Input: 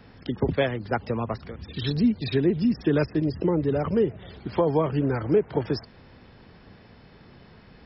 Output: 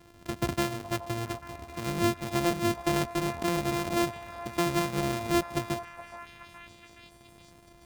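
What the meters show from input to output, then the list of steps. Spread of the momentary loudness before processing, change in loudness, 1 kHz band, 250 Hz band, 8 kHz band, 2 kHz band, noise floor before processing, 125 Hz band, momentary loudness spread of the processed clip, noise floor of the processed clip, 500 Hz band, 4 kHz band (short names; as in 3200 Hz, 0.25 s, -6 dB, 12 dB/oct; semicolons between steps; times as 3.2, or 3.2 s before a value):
9 LU, -5.0 dB, +2.0 dB, -6.0 dB, n/a, +1.0 dB, -52 dBFS, -6.5 dB, 17 LU, -55 dBFS, -7.0 dB, +1.5 dB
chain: sample sorter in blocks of 128 samples; delay with a stepping band-pass 0.421 s, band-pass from 810 Hz, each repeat 0.7 oct, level -9 dB; gain -5.5 dB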